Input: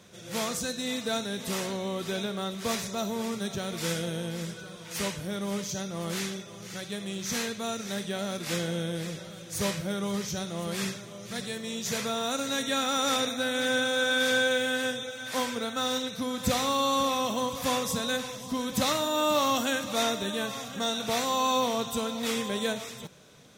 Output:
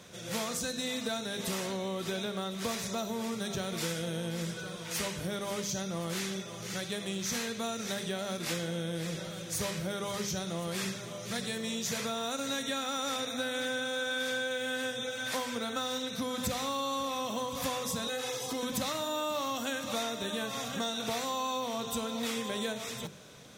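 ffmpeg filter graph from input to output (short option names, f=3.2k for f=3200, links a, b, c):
-filter_complex "[0:a]asettb=1/sr,asplit=3[a][b][c];[a]atrim=end=18.074[d];[b]atrim=start=18.07:end=18.63,asetpts=PTS-STARTPTS,afade=t=in:d=0.004:c=qsin,afade=t=out:st=0.556:d=0.004:c=qsin,highpass=150,aecho=1:1:2.4:0.93,atrim=end_sample=24696,acompressor=threshold=-32dB:ratio=3:attack=3.2:release=140:knee=1:detection=peak[e];[c]atrim=start=18.626[f];[d][e]acrossfade=d=0.004:c1=hsin:c2=qsin[g];[g][f]acrossfade=d=0.004:c1=qsin:c2=hsin,bandreject=f=50:t=h:w=6,bandreject=f=100:t=h:w=6,bandreject=f=150:t=h:w=6,bandreject=f=200:t=h:w=6,bandreject=f=250:t=h:w=6,bandreject=f=300:t=h:w=6,bandreject=f=350:t=h:w=6,bandreject=f=400:t=h:w=6,bandreject=f=450:t=h:w=6,acompressor=threshold=-34dB:ratio=6,volume=3dB"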